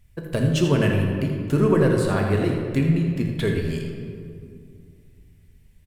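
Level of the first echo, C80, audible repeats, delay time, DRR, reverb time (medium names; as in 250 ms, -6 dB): -10.0 dB, 3.5 dB, 1, 82 ms, 0.5 dB, 2.3 s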